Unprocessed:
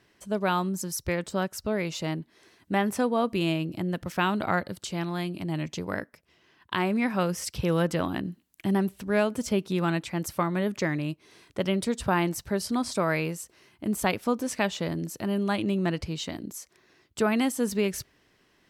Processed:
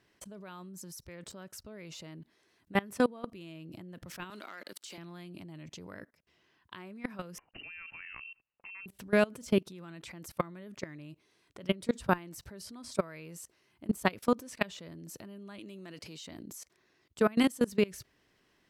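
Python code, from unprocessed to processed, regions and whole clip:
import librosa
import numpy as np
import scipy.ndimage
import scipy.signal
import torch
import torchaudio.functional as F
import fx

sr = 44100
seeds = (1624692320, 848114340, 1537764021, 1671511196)

y = fx.chain(x, sr, fx.leveller(passes=1),
    fx.highpass(hz=310.0, slope=24),
    fx.peak_eq(hz=510.0, db=-10.0, octaves=2.1), at=(4.3, 4.98))
y = fx.chain(y, sr, fx.highpass(hz=50.0, slope=12),
    fx.low_shelf(hz=420.0, db=-6.5),
    fx.freq_invert(carrier_hz=2900), at=(7.38, 8.86))
y = fx.chain(y, sr, fx.highpass(hz=210.0, slope=12),
    fx.high_shelf(hz=3100.0, db=8.0), at=(15.59, 16.27))
y = fx.dynamic_eq(y, sr, hz=800.0, q=4.0, threshold_db=-45.0, ratio=4.0, max_db=-6)
y = fx.level_steps(y, sr, step_db=24)
y = F.gain(torch.from_numpy(y), 1.5).numpy()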